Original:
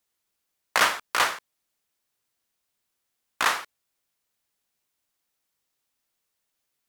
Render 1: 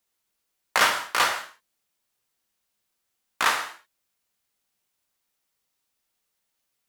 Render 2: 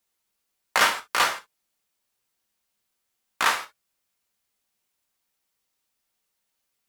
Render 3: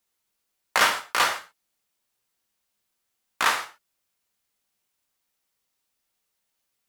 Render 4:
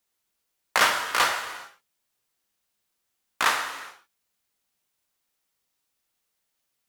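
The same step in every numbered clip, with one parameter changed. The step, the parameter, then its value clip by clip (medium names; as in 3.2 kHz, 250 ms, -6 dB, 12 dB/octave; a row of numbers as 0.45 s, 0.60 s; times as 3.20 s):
gated-style reverb, gate: 230 ms, 90 ms, 150 ms, 440 ms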